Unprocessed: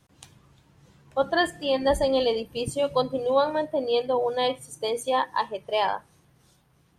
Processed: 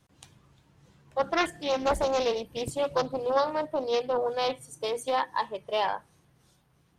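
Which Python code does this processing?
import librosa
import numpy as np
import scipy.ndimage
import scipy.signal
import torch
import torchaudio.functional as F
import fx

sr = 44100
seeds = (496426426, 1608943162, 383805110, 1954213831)

y = fx.doppler_dist(x, sr, depth_ms=0.77)
y = y * librosa.db_to_amplitude(-3.0)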